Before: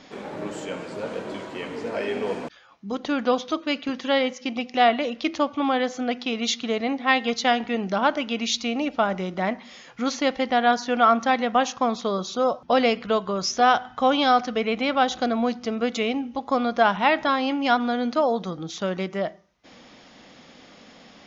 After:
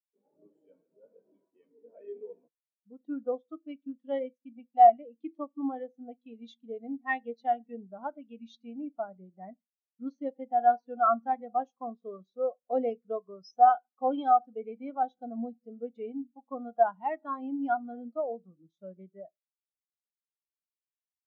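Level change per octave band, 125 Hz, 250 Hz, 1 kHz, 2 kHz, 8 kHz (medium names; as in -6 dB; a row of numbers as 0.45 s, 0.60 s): under -20 dB, -13.0 dB, -4.5 dB, -17.0 dB, no reading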